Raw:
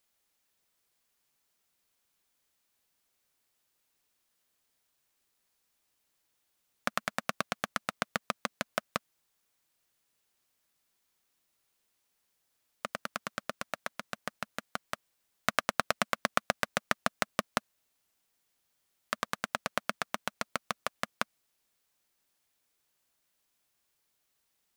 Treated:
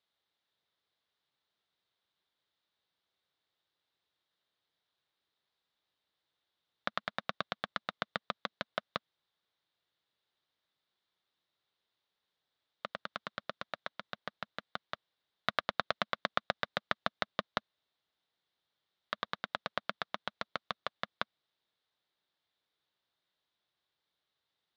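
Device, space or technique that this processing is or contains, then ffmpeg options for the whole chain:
guitar cabinet: -af "highpass=79,equalizer=f=240:t=q:w=4:g=-6,equalizer=f=2.5k:t=q:w=4:g=-5,equalizer=f=3.7k:t=q:w=4:g=8,lowpass=f=4.2k:w=0.5412,lowpass=f=4.2k:w=1.3066,volume=-3.5dB"

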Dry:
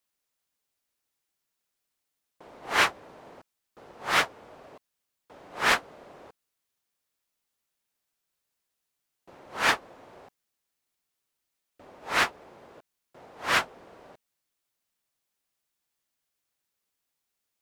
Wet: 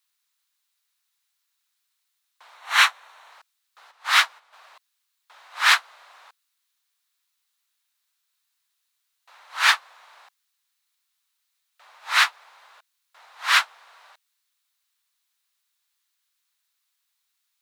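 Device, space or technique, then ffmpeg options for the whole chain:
headphones lying on a table: -filter_complex "[0:a]asettb=1/sr,asplit=3[a][b][c];[a]atrim=end=2.554[d];[b]atrim=start=2.55:end=3.3,asetpts=PTS-STARTPTS,afade=t=in:d=0.004:c=qsin,afade=t=out:st=0.746:d=0.004:c=qsin,bandreject=f=4.9k:w=7[e];[c]atrim=start=3.296[f];[d][e]acrossfade=d=0.004:c1=hsin:c2=qsin[g];[g][f]acrossfade=d=0.004:c1=qsin:c2=hsin,asplit=3[h][i][j];[h]afade=t=out:st=3.9:d=0.02[k];[i]agate=range=-10dB:threshold=-41dB:ratio=16:detection=peak,afade=t=in:st=3.9:d=0.02,afade=t=out:st=4.52:d=0.02[l];[j]afade=t=in:st=4.52:d=0.02[m];[k][l][m]amix=inputs=3:normalize=0,highpass=f=1k:w=0.5412,highpass=f=1k:w=1.3066,equalizer=f=3.9k:t=o:w=0.37:g=5.5,volume=6dB"

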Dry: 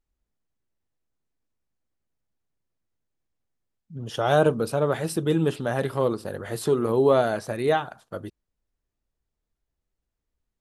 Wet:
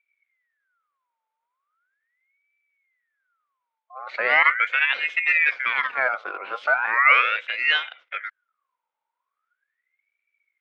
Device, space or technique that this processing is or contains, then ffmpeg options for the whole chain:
voice changer toy: -af "aeval=exprs='val(0)*sin(2*PI*1600*n/s+1600*0.45/0.39*sin(2*PI*0.39*n/s))':c=same,highpass=450,equalizer=f=510:t=q:w=4:g=6,equalizer=f=830:t=q:w=4:g=-3,equalizer=f=1.4k:t=q:w=4:g=7,equalizer=f=2.2k:t=q:w=4:g=8,equalizer=f=3.5k:t=q:w=4:g=4,lowpass=f=3.8k:w=0.5412,lowpass=f=3.8k:w=1.3066"

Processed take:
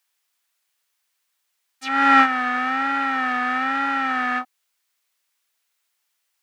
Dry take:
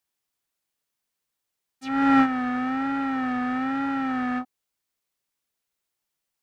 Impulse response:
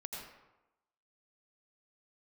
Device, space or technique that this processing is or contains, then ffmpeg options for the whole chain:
filter by subtraction: -filter_complex "[0:a]asplit=2[a][b];[b]lowpass=1.7k,volume=-1[c];[a][c]amix=inputs=2:normalize=0,volume=8.5dB"

